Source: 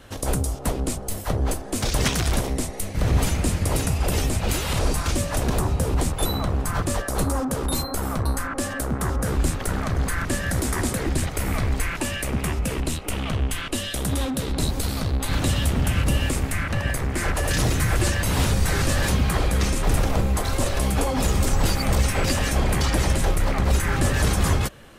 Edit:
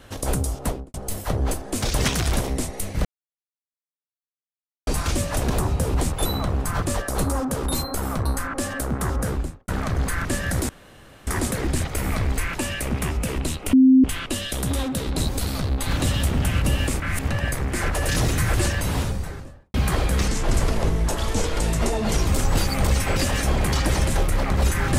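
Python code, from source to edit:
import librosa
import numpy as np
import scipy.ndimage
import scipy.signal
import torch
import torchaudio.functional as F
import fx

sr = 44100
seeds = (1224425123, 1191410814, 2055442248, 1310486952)

y = fx.studio_fade_out(x, sr, start_s=0.63, length_s=0.31)
y = fx.studio_fade_out(y, sr, start_s=9.2, length_s=0.48)
y = fx.studio_fade_out(y, sr, start_s=18.03, length_s=1.13)
y = fx.edit(y, sr, fx.silence(start_s=3.05, length_s=1.82),
    fx.insert_room_tone(at_s=10.69, length_s=0.58),
    fx.bleep(start_s=13.15, length_s=0.31, hz=261.0, db=-9.5),
    fx.reverse_span(start_s=16.42, length_s=0.28),
    fx.speed_span(start_s=19.7, length_s=1.65, speed=0.83), tone=tone)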